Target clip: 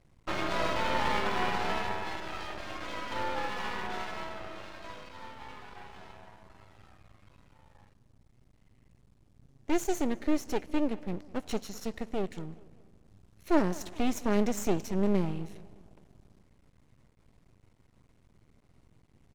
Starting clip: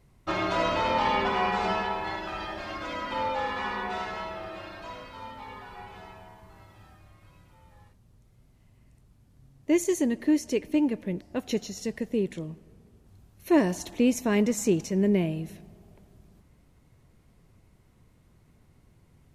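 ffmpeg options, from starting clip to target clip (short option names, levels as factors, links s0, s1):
-filter_complex "[0:a]lowpass=9000,aeval=exprs='max(val(0),0)':c=same,asplit=2[s0][s1];[s1]adelay=206,lowpass=f=4100:p=1,volume=0.0891,asplit=2[s2][s3];[s3]adelay=206,lowpass=f=4100:p=1,volume=0.46,asplit=2[s4][s5];[s5]adelay=206,lowpass=f=4100:p=1,volume=0.46[s6];[s2][s4][s6]amix=inputs=3:normalize=0[s7];[s0][s7]amix=inputs=2:normalize=0"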